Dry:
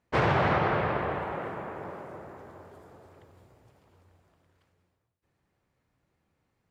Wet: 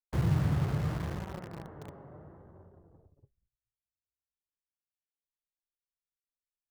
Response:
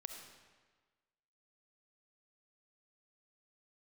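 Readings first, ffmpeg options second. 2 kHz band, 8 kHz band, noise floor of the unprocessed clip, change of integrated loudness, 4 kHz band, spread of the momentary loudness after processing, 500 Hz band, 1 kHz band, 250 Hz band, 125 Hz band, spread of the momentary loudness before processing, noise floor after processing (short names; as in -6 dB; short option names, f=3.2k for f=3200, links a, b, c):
-15.5 dB, n/a, -78 dBFS, -3.5 dB, -9.0 dB, 20 LU, -13.5 dB, -16.0 dB, -1.5 dB, +3.0 dB, 20 LU, under -85 dBFS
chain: -filter_complex "[0:a]bandreject=f=2.4k:w=5.5,agate=range=-27dB:threshold=-54dB:ratio=16:detection=peak,anlmdn=0.00631,aeval=exprs='0.251*(cos(1*acos(clip(val(0)/0.251,-1,1)))-cos(1*PI/2))+0.00501*(cos(5*acos(clip(val(0)/0.251,-1,1)))-cos(5*PI/2))':c=same,acrossover=split=300|1100[a][b][c];[b]acompressor=threshold=-39dB:ratio=12[d];[c]asoftclip=type=tanh:threshold=-37dB[e];[a][d][e]amix=inputs=3:normalize=0,flanger=delay=5.1:depth=2.3:regen=62:speed=0.76:shape=triangular,aemphasis=mode=reproduction:type=riaa,asplit=2[f][g];[g]acrusher=bits=4:mix=0:aa=0.000001,volume=-5dB[h];[f][h]amix=inputs=2:normalize=0,adynamicequalizer=threshold=0.00282:dfrequency=5700:dqfactor=0.7:tfrequency=5700:tqfactor=0.7:attack=5:release=100:ratio=0.375:range=2:mode=cutabove:tftype=highshelf,volume=-8.5dB"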